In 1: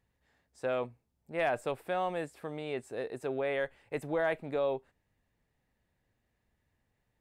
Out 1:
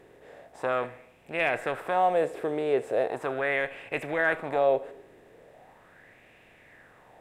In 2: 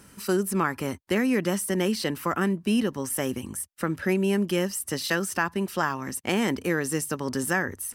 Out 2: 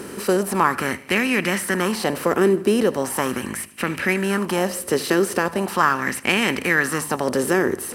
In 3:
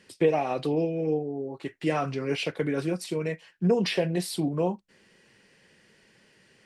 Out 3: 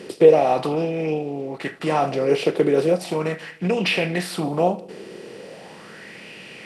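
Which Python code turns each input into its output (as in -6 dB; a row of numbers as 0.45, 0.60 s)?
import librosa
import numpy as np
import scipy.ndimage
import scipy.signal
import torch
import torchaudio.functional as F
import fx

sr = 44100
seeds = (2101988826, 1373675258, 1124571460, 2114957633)

y = fx.bin_compress(x, sr, power=0.6)
y = fx.echo_feedback(y, sr, ms=77, feedback_pct=58, wet_db=-19)
y = fx.bell_lfo(y, sr, hz=0.39, low_hz=380.0, high_hz=2600.0, db=12)
y = F.gain(torch.from_numpy(y), -1.0).numpy()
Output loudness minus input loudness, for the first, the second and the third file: +7.0, +6.0, +7.0 LU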